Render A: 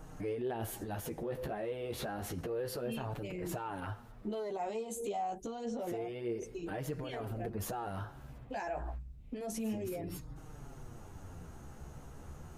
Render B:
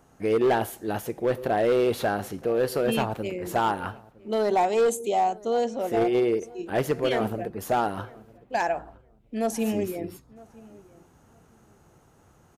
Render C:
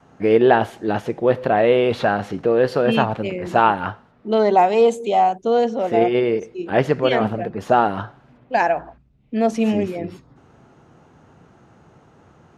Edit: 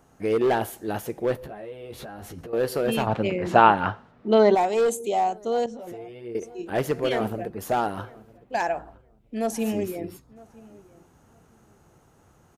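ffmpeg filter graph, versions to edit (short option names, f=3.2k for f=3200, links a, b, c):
-filter_complex "[0:a]asplit=2[a][b];[1:a]asplit=4[c][d][e][f];[c]atrim=end=1.372[g];[a]atrim=start=1.368:end=2.532[h];[d]atrim=start=2.528:end=3.072[i];[2:a]atrim=start=3.068:end=4.552[j];[e]atrim=start=4.548:end=5.662[k];[b]atrim=start=5.658:end=6.352[l];[f]atrim=start=6.348[m];[g][h]acrossfade=d=0.004:c1=hsin:c2=hsin[n];[n][i]acrossfade=d=0.004:c1=hsin:c2=hsin[o];[o][j]acrossfade=d=0.004:c1=hsin:c2=hsin[p];[p][k]acrossfade=d=0.004:c1=hsin:c2=hsin[q];[q][l]acrossfade=d=0.004:c1=hsin:c2=hsin[r];[r][m]acrossfade=d=0.004:c1=hsin:c2=hsin"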